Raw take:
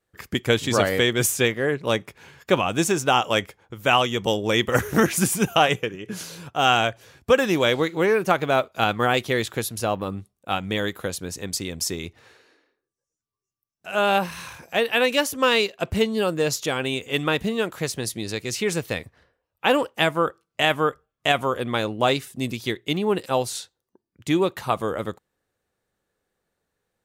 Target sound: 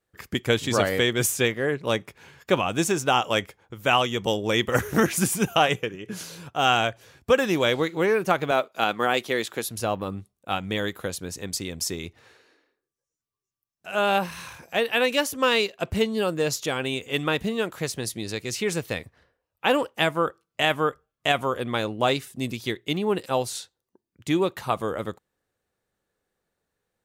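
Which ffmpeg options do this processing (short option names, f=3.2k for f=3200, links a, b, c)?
-filter_complex "[0:a]asettb=1/sr,asplit=3[a][b][c];[a]atrim=end=8.514[d];[b]atrim=start=8.51:end=9.69,asetpts=PTS-STARTPTS,afade=t=in:d=0.004:c=qsin,afade=t=out:st=1.176:d=0.004:c=qsin,highpass=220[e];[c]atrim=start=9.686[f];[d][e]acrossfade=d=0.004:c1=hsin:c2=qsin[g];[g][f]acrossfade=d=0.004:c1=qsin:c2=hsin,volume=-2dB"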